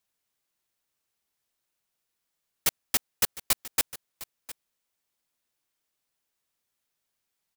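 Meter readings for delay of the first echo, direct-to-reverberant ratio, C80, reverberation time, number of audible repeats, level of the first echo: 0.707 s, none, none, none, 1, -17.0 dB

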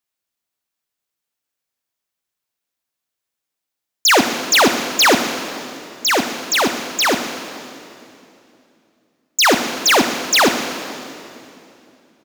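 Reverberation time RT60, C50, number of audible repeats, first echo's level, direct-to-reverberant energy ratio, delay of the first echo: 2.8 s, 7.0 dB, 1, -14.5 dB, 6.5 dB, 0.125 s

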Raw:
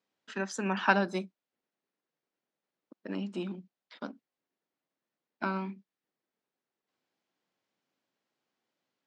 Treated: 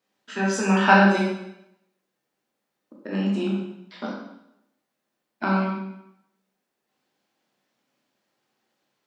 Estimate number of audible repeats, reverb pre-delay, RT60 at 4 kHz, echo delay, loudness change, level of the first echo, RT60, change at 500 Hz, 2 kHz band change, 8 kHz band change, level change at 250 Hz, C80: none, 6 ms, 0.75 s, none, +11.0 dB, none, 0.80 s, +10.0 dB, +10.0 dB, n/a, +13.0 dB, 4.5 dB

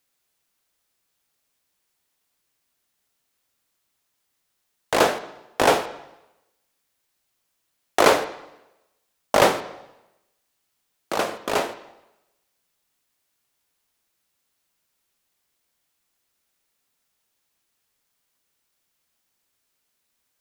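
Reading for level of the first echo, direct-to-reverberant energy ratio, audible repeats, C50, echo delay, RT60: none, 11.0 dB, none, 14.0 dB, none, 0.95 s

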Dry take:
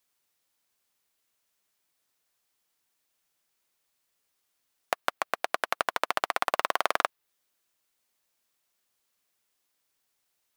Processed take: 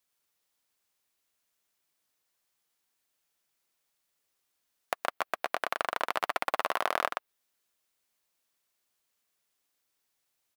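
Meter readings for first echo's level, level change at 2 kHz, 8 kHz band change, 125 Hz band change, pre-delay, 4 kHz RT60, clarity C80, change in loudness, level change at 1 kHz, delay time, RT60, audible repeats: -4.0 dB, -2.5 dB, -5.0 dB, n/a, none, none, none, -2.5 dB, -2.5 dB, 0.122 s, none, 1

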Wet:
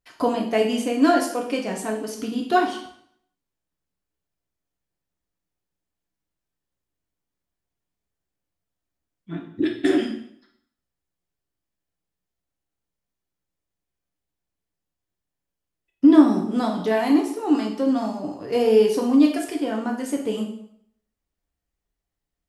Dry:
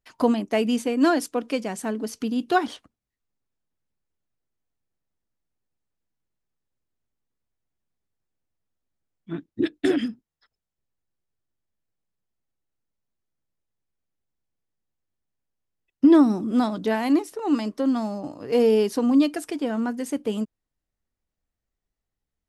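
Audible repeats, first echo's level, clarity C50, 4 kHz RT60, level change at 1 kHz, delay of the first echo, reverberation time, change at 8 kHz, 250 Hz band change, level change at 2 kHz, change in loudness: none, none, 6.5 dB, 0.60 s, +3.0 dB, none, 0.65 s, n/a, +1.5 dB, +1.5 dB, +1.5 dB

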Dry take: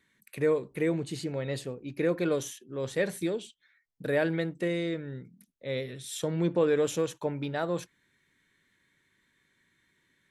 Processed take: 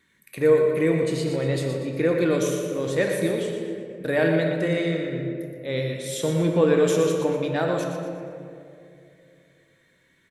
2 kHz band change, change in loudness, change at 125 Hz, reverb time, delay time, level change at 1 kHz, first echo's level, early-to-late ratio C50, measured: +7.0 dB, +7.0 dB, +8.5 dB, 2.5 s, 0.12 s, +7.0 dB, -7.5 dB, 2.0 dB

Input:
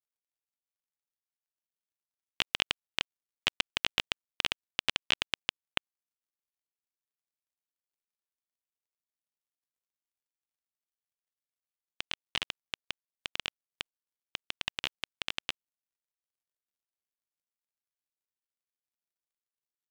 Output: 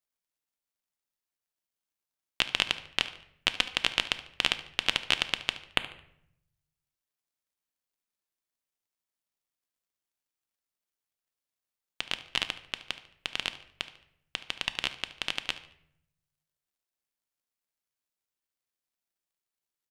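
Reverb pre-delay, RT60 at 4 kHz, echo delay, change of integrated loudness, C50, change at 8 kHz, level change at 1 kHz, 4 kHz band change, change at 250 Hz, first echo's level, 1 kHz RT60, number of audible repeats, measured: 3 ms, 0.50 s, 73 ms, +4.0 dB, 13.0 dB, +4.0 dB, +4.0 dB, +4.0 dB, +4.0 dB, -17.5 dB, 0.65 s, 2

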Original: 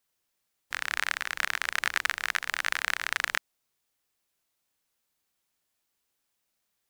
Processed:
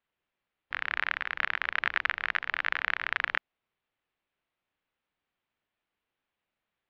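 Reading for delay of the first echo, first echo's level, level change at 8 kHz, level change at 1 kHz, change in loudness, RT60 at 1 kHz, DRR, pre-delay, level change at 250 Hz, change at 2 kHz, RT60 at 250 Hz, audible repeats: none, none, under -25 dB, 0.0 dB, -1.0 dB, none, none, none, 0.0 dB, 0.0 dB, none, none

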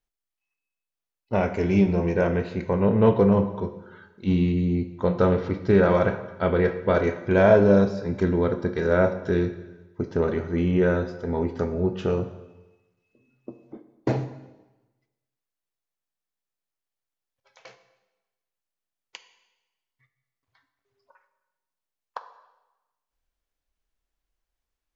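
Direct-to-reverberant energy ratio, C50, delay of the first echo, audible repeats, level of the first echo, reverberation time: 9.0 dB, 11.5 dB, none, none, none, 1.1 s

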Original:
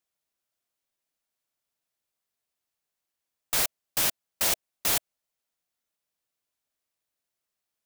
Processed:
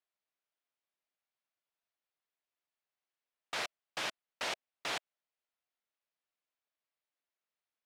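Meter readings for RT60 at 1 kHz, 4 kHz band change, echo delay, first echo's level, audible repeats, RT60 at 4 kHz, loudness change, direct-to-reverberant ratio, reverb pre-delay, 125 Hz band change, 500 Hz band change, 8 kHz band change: none, -8.5 dB, none, none, none, none, -13.0 dB, none, none, -15.5 dB, -6.0 dB, -19.0 dB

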